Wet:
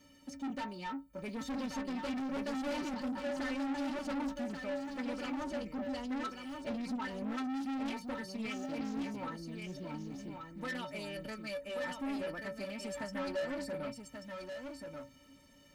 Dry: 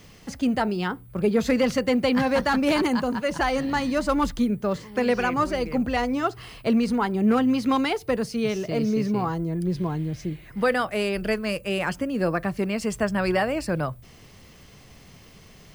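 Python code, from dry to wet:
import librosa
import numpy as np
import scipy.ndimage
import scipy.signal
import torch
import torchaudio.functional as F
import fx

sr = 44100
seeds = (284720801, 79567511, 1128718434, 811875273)

y = scipy.signal.sosfilt(scipy.signal.butter(2, 47.0, 'highpass', fs=sr, output='sos'), x)
y = fx.low_shelf(y, sr, hz=410.0, db=5.0)
y = fx.hum_notches(y, sr, base_hz=60, count=2)
y = fx.stiff_resonator(y, sr, f0_hz=270.0, decay_s=0.24, stiffness=0.03)
y = 10.0 ** (-37.0 / 20.0) * np.tanh(y / 10.0 ** (-37.0 / 20.0))
y = y + 10.0 ** (-5.5 / 20.0) * np.pad(y, (int(1133 * sr / 1000.0), 0))[:len(y)]
y = fx.doppler_dist(y, sr, depth_ms=0.17)
y = F.gain(torch.from_numpy(y), 1.5).numpy()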